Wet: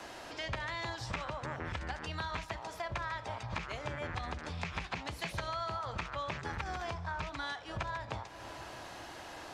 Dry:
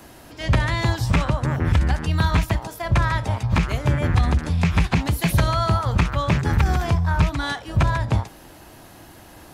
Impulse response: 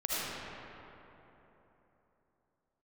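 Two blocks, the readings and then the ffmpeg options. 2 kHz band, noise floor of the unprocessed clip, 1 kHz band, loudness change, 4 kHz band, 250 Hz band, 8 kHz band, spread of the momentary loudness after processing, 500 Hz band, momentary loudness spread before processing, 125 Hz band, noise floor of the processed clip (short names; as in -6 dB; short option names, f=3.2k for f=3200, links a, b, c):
-12.0 dB, -45 dBFS, -12.5 dB, -18.0 dB, -11.5 dB, -21.5 dB, -15.0 dB, 8 LU, -13.0 dB, 4 LU, -24.0 dB, -48 dBFS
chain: -filter_complex "[0:a]acrossover=split=410 7600:gain=0.224 1 0.0708[a][b][c];[a][b][c]amix=inputs=3:normalize=0,asplit=2[d][e];[1:a]atrim=start_sample=2205,adelay=81[f];[e][f]afir=irnorm=-1:irlink=0,volume=-28.5dB[g];[d][g]amix=inputs=2:normalize=0,acompressor=threshold=-42dB:ratio=3,volume=1.5dB"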